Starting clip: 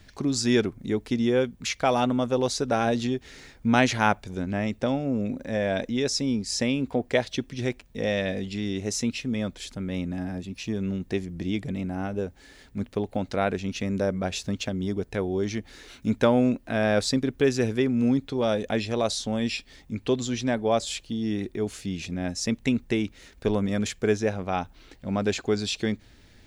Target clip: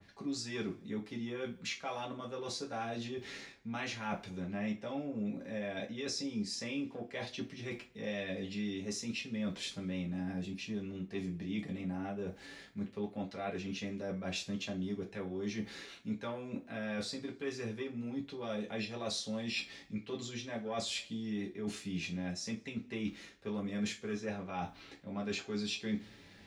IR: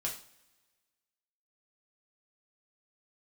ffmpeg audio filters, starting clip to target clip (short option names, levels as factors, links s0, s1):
-filter_complex "[0:a]lowpass=f=3000:p=1,acrossover=split=290|730[s0][s1][s2];[s1]asoftclip=type=tanh:threshold=0.0708[s3];[s0][s3][s2]amix=inputs=3:normalize=0,highpass=f=200:p=1,areverse,acompressor=threshold=0.01:ratio=4,areverse[s4];[1:a]atrim=start_sample=2205,asetrate=74970,aresample=44100[s5];[s4][s5]afir=irnorm=-1:irlink=0,adynamicequalizer=threshold=0.00112:dfrequency=1900:dqfactor=0.7:tfrequency=1900:tqfactor=0.7:attack=5:release=100:ratio=0.375:range=2:mode=boostabove:tftype=highshelf,volume=1.58"